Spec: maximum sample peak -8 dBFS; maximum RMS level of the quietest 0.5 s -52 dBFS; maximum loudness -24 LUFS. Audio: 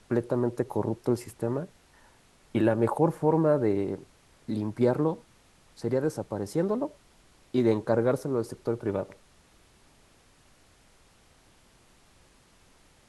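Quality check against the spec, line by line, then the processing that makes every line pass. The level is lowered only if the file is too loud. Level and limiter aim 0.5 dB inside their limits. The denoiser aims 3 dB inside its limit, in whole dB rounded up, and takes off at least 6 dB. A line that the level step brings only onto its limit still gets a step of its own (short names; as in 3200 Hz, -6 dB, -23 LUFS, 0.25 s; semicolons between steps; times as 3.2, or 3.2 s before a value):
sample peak -10.0 dBFS: OK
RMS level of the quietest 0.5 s -60 dBFS: OK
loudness -28.0 LUFS: OK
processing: none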